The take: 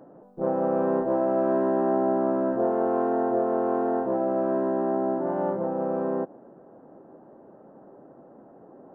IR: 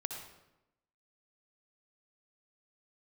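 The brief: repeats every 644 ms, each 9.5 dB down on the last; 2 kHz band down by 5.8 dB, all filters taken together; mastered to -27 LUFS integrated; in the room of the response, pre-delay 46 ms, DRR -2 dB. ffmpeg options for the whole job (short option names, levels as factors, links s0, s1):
-filter_complex "[0:a]equalizer=f=2000:t=o:g=-8.5,aecho=1:1:644|1288|1932|2576:0.335|0.111|0.0365|0.012,asplit=2[s0][s1];[1:a]atrim=start_sample=2205,adelay=46[s2];[s1][s2]afir=irnorm=-1:irlink=0,volume=1.19[s3];[s0][s3]amix=inputs=2:normalize=0,volume=0.473"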